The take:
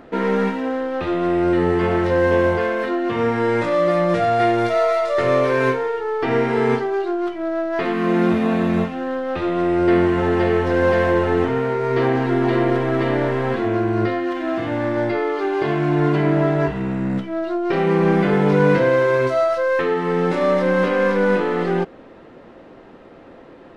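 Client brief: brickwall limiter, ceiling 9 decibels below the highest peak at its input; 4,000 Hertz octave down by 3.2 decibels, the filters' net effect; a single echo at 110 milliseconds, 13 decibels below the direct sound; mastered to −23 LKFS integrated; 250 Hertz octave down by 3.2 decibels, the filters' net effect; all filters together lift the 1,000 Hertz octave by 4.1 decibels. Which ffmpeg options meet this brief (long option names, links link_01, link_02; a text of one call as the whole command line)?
ffmpeg -i in.wav -af "equalizer=frequency=250:width_type=o:gain=-5.5,equalizer=frequency=1000:width_type=o:gain=6,equalizer=frequency=4000:width_type=o:gain=-5,alimiter=limit=-12.5dB:level=0:latency=1,aecho=1:1:110:0.224,volume=-1.5dB" out.wav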